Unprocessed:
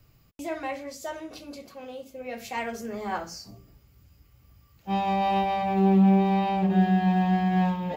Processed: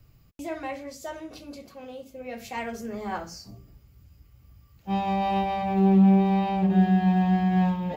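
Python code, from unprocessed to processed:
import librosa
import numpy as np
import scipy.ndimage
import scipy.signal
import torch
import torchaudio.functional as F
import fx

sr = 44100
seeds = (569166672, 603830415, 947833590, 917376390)

y = fx.low_shelf(x, sr, hz=210.0, db=6.5)
y = y * librosa.db_to_amplitude(-2.0)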